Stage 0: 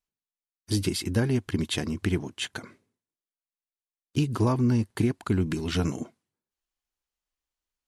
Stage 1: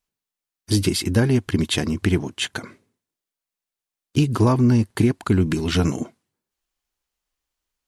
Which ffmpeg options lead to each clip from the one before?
-af "acontrast=79"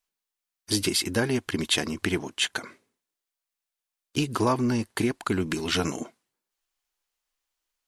-af "equalizer=f=83:w=0.34:g=-14"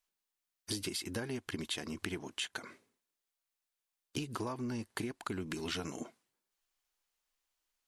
-af "acompressor=threshold=0.02:ratio=6,volume=0.794"

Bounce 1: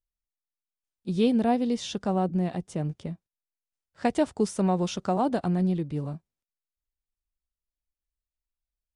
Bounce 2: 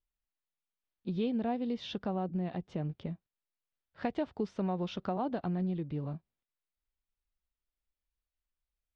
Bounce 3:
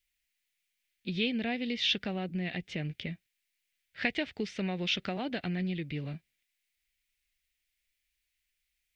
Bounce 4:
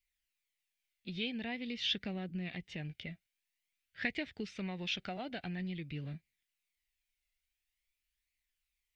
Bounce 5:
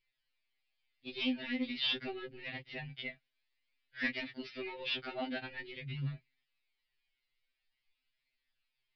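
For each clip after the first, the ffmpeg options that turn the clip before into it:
-af "acompressor=threshold=0.0141:ratio=2,lowpass=f=4000:w=0.5412,lowpass=f=4000:w=1.3066"
-af "highshelf=f=1500:t=q:w=3:g=12"
-af "flanger=delay=0.4:depth=1.1:regen=51:speed=0.48:shape=triangular,volume=0.794"
-af "aresample=11025,asoftclip=type=tanh:threshold=0.0316,aresample=44100,afftfilt=real='re*2.45*eq(mod(b,6),0)':imag='im*2.45*eq(mod(b,6),0)':win_size=2048:overlap=0.75,volume=2.11"

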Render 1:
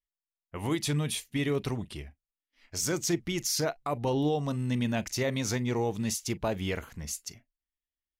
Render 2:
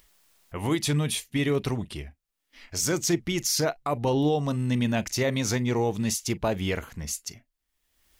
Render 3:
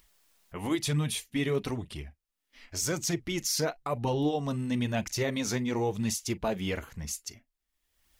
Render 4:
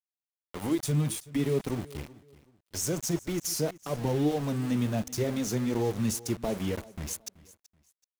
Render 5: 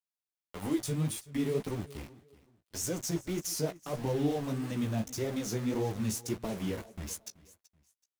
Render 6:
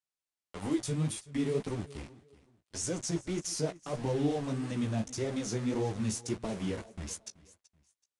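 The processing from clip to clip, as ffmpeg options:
-af "acompressor=mode=upward:threshold=0.00631:ratio=2.5,volume=1.58"
-af "flanger=delay=0.7:depth=4.6:regen=-43:speed=0.99:shape=triangular"
-filter_complex "[0:a]acrossover=split=140|680|6000[s0][s1][s2][s3];[s2]acompressor=threshold=0.00447:ratio=6[s4];[s0][s1][s4][s3]amix=inputs=4:normalize=0,aeval=exprs='val(0)*gte(abs(val(0)),0.0126)':c=same,aecho=1:1:379|758:0.1|0.028,volume=1.26"
-af "flanger=delay=9.7:depth=8.8:regen=-15:speed=1.7:shape=sinusoidal"
-af "aresample=22050,aresample=44100"

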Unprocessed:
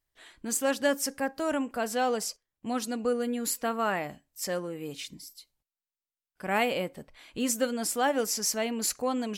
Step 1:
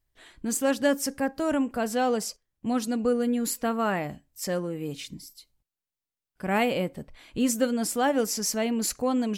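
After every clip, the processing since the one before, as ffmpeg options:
-af "lowshelf=f=300:g=10"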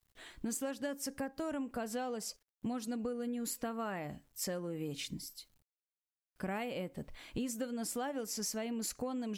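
-af "acrusher=bits=11:mix=0:aa=0.000001,acompressor=threshold=0.02:ratio=10,volume=0.891"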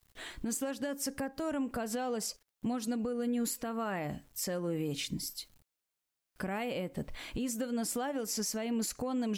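-af "alimiter=level_in=2.99:limit=0.0631:level=0:latency=1:release=229,volume=0.335,volume=2.51"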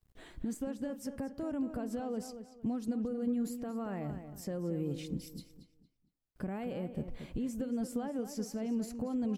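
-filter_complex "[0:a]tiltshelf=f=710:g=7.5,asplit=2[s0][s1];[s1]adelay=229,lowpass=f=3600:p=1,volume=0.335,asplit=2[s2][s3];[s3]adelay=229,lowpass=f=3600:p=1,volume=0.32,asplit=2[s4][s5];[s5]adelay=229,lowpass=f=3600:p=1,volume=0.32,asplit=2[s6][s7];[s7]adelay=229,lowpass=f=3600:p=1,volume=0.32[s8];[s0][s2][s4][s6][s8]amix=inputs=5:normalize=0,volume=0.501"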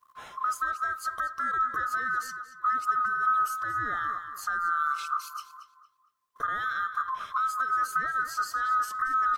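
-af "afftfilt=real='real(if(lt(b,960),b+48*(1-2*mod(floor(b/48),2)),b),0)':imag='imag(if(lt(b,960),b+48*(1-2*mod(floor(b/48),2)),b),0)':win_size=2048:overlap=0.75,volume=2.37"

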